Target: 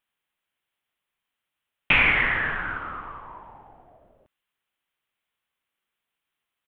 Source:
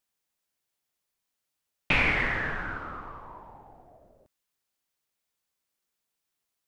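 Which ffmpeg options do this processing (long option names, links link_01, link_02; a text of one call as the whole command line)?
ffmpeg -i in.wav -af "firequalizer=gain_entry='entry(560,0);entry(1100,5);entry(3200,7);entry(4700,-17);entry(9300,-6)':delay=0.05:min_phase=1" out.wav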